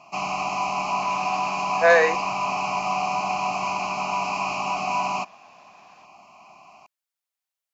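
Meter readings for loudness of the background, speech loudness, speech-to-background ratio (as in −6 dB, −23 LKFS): −25.5 LKFS, −19.5 LKFS, 6.0 dB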